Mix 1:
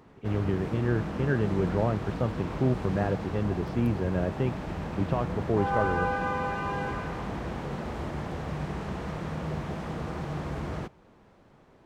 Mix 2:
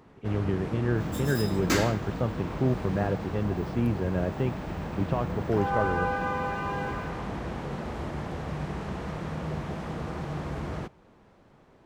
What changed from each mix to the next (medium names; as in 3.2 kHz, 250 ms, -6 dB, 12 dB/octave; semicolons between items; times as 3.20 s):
second sound: unmuted; reverb: on, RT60 0.45 s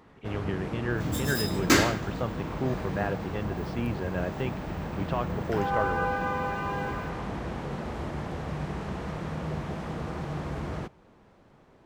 speech: add tilt shelf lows -6 dB, about 750 Hz; second sound +5.5 dB